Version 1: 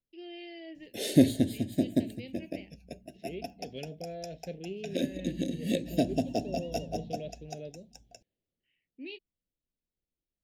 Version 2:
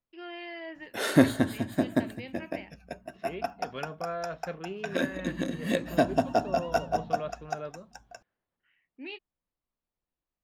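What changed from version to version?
master: remove Butterworth band-reject 1,200 Hz, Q 0.54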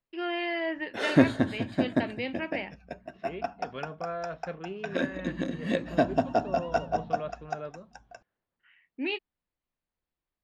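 first voice +10.5 dB
master: add high-frequency loss of the air 98 metres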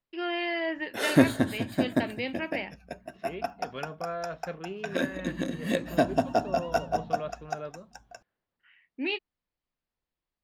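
master: remove high-frequency loss of the air 98 metres

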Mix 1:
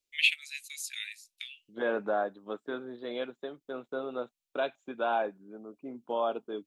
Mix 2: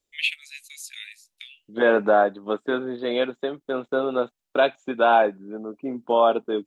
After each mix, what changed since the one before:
second voice +12.0 dB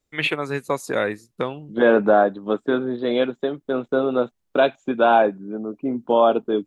first voice: remove Butterworth high-pass 2,300 Hz 48 dB per octave
second voice: add low-shelf EQ 310 Hz +10 dB

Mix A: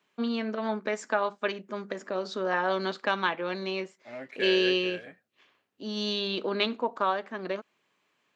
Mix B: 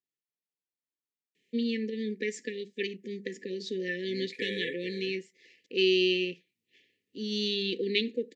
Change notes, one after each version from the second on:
first voice: entry +1.35 s
master: add linear-phase brick-wall band-stop 530–1,700 Hz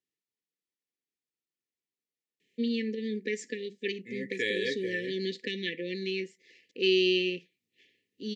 first voice: entry +1.05 s
second voice +5.5 dB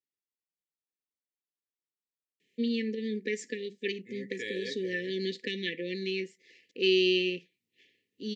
second voice −7.5 dB

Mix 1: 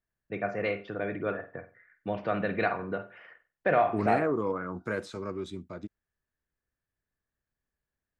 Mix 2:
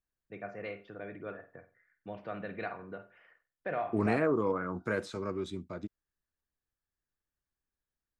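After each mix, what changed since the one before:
first voice −10.5 dB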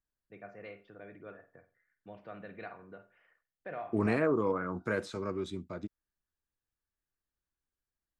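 first voice −6.5 dB

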